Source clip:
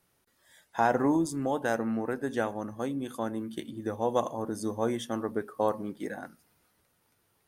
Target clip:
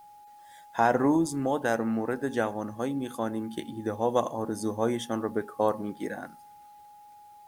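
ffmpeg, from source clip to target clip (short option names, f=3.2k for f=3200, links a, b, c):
-af "aeval=exprs='val(0)+0.00282*sin(2*PI*830*n/s)':c=same,acrusher=bits=10:mix=0:aa=0.000001,volume=2dB"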